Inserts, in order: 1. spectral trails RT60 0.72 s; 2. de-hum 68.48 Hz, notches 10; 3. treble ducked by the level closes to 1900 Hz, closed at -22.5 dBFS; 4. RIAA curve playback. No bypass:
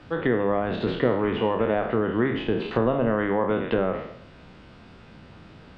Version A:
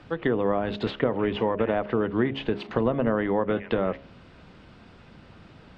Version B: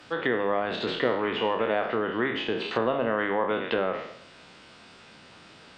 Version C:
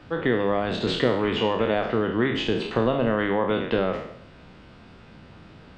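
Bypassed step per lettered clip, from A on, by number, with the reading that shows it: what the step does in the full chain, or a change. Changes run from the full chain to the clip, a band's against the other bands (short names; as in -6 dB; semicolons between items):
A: 1, 4 kHz band +2.0 dB; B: 4, 125 Hz band -11.0 dB; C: 3, 4 kHz band +8.5 dB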